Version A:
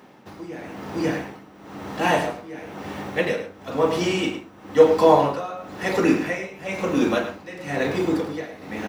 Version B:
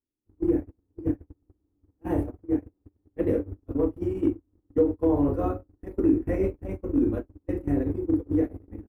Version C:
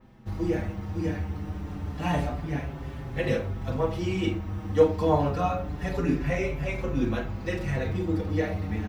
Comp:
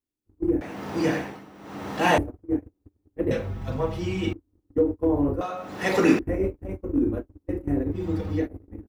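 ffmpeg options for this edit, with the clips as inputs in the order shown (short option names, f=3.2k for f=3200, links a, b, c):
-filter_complex "[0:a]asplit=2[a][b];[2:a]asplit=2[c][d];[1:a]asplit=5[e][f][g][h][i];[e]atrim=end=0.612[j];[a]atrim=start=0.608:end=2.182[k];[f]atrim=start=2.178:end=3.312[l];[c]atrim=start=3.308:end=4.332[m];[g]atrim=start=4.328:end=5.412[n];[b]atrim=start=5.408:end=6.192[o];[h]atrim=start=6.188:end=8.07[p];[d]atrim=start=7.91:end=8.48[q];[i]atrim=start=8.32[r];[j][k]acrossfade=d=0.004:c1=hsin:c2=hsin[s];[s][l]acrossfade=d=0.004:c1=hsin:c2=hsin[t];[t][m]acrossfade=d=0.004:c1=hsin:c2=hsin[u];[u][n]acrossfade=d=0.004:c1=hsin:c2=hsin[v];[v][o]acrossfade=d=0.004:c1=hsin:c2=hsin[w];[w][p]acrossfade=d=0.004:c1=hsin:c2=hsin[x];[x][q]acrossfade=d=0.16:c1=tri:c2=tri[y];[y][r]acrossfade=d=0.16:c1=tri:c2=tri"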